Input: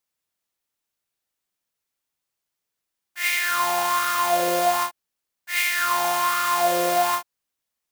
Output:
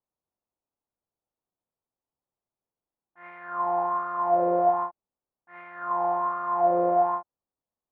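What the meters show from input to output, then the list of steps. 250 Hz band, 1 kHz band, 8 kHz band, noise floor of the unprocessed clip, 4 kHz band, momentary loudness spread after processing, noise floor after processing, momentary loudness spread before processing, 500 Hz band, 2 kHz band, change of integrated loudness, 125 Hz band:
0.0 dB, -2.5 dB, under -40 dB, -83 dBFS, under -40 dB, 13 LU, under -85 dBFS, 6 LU, 0.0 dB, -19.5 dB, -4.0 dB, 0.0 dB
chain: low-pass 1 kHz 24 dB/octave

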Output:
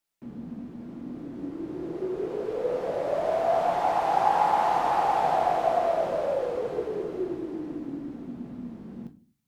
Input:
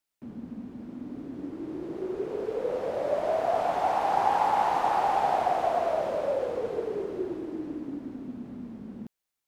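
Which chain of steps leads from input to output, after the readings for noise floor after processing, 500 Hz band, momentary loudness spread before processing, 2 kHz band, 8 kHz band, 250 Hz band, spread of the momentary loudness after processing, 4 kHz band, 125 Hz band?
-58 dBFS, +1.5 dB, 16 LU, +1.0 dB, no reading, +1.5 dB, 16 LU, +1.0 dB, +3.0 dB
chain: simulated room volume 190 m³, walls furnished, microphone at 0.8 m

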